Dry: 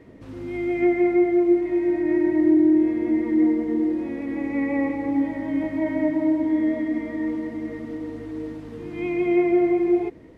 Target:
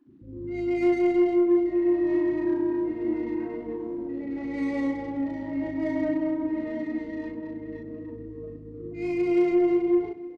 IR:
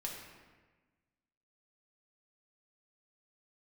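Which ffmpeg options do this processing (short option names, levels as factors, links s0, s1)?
-filter_complex "[0:a]afftfilt=real='re*gte(hypot(re,im),0.0251)':imag='im*gte(hypot(re,im),0.0251)':win_size=1024:overlap=0.75,acrusher=bits=10:mix=0:aa=0.000001,aeval=exprs='0.335*(cos(1*acos(clip(val(0)/0.335,-1,1)))-cos(1*PI/2))+0.0133*(cos(5*acos(clip(val(0)/0.335,-1,1)))-cos(5*PI/2))':c=same,asplit=2[s0][s1];[s1]aecho=0:1:299|598|897|1196:0.141|0.0664|0.0312|0.0147[s2];[s0][s2]amix=inputs=2:normalize=0,adynamicsmooth=sensitivity=5.5:basefreq=1900,asplit=2[s3][s4];[s4]adelay=37,volume=0.794[s5];[s3][s5]amix=inputs=2:normalize=0,asplit=2[s6][s7];[s7]aecho=0:1:98:0.158[s8];[s6][s8]amix=inputs=2:normalize=0,volume=0.447"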